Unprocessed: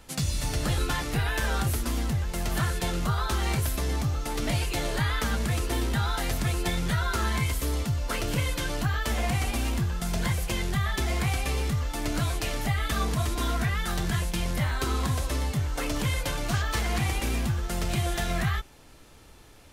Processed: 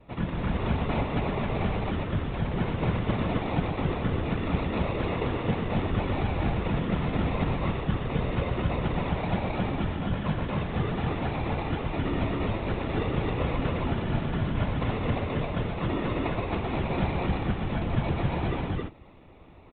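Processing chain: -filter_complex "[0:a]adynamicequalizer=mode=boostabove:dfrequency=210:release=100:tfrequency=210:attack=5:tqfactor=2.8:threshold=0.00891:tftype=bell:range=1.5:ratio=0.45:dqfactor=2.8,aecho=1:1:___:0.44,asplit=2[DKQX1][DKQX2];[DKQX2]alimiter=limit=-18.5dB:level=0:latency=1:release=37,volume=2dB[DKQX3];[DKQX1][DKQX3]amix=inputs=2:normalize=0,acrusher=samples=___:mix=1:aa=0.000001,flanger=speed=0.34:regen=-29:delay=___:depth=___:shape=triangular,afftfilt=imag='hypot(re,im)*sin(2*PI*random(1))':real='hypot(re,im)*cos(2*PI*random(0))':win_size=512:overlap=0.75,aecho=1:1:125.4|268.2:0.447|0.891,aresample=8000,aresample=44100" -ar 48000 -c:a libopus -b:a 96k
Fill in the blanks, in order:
6.8, 28, 4.8, 9.8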